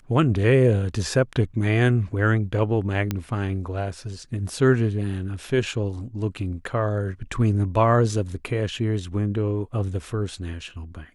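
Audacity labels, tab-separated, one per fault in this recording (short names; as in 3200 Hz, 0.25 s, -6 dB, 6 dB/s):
3.110000	3.110000	pop -11 dBFS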